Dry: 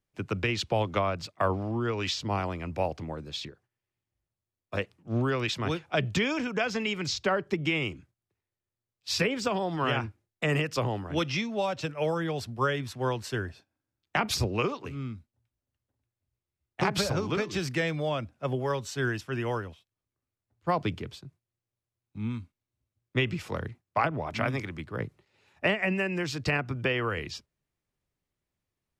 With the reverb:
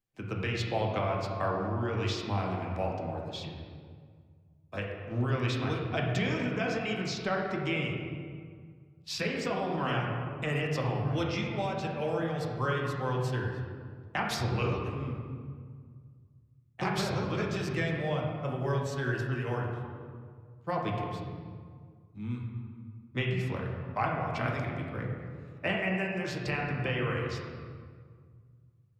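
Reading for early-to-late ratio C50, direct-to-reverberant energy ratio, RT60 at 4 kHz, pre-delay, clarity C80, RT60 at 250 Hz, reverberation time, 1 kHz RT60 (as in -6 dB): 2.0 dB, -2.0 dB, 1.2 s, 4 ms, 3.5 dB, 2.3 s, 1.9 s, 1.8 s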